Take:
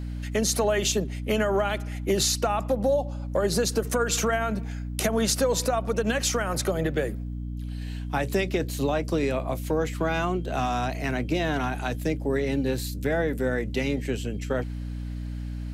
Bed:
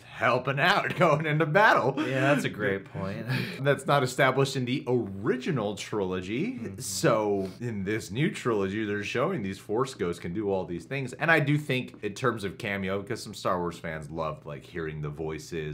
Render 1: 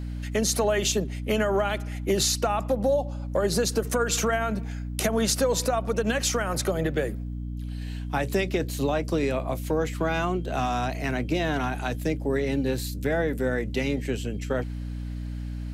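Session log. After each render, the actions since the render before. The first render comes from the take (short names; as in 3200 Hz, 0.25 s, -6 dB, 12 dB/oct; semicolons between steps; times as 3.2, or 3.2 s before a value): nothing audible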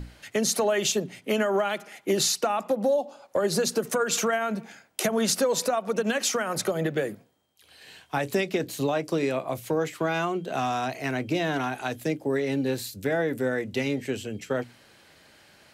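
notches 60/120/180/240/300 Hz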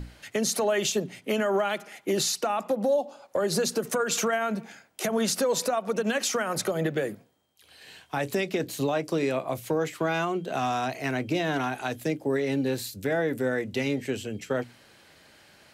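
limiter -17 dBFS, peak gain reduction 10 dB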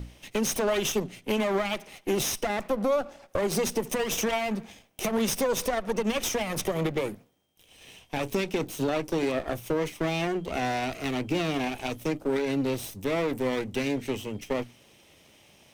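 minimum comb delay 0.35 ms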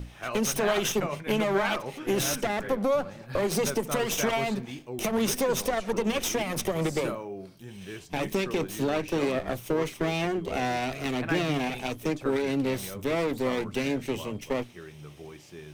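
add bed -11 dB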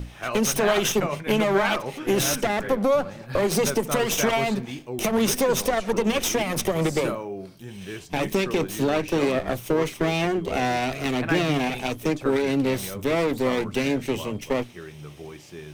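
gain +4.5 dB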